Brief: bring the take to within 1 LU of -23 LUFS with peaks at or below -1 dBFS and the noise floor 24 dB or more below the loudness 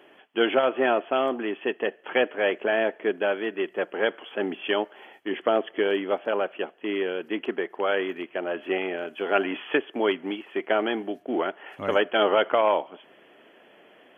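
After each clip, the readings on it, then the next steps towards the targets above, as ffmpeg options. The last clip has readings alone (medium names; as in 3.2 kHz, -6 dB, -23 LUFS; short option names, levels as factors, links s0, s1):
loudness -26.5 LUFS; peak level -9.0 dBFS; loudness target -23.0 LUFS
-> -af "volume=1.5"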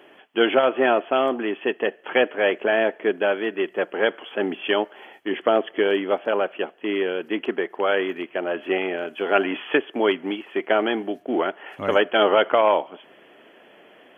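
loudness -23.0 LUFS; peak level -5.5 dBFS; noise floor -52 dBFS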